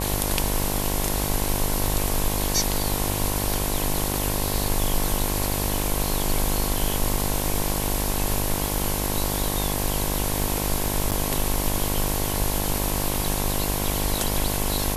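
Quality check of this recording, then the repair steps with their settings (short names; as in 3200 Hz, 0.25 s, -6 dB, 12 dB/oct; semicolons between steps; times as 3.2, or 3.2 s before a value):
buzz 50 Hz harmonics 22 -28 dBFS
11.11–11.12 gap 7.8 ms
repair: de-hum 50 Hz, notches 22; interpolate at 11.11, 7.8 ms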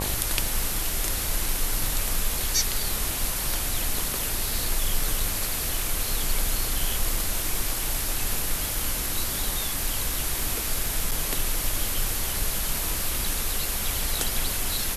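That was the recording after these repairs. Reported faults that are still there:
none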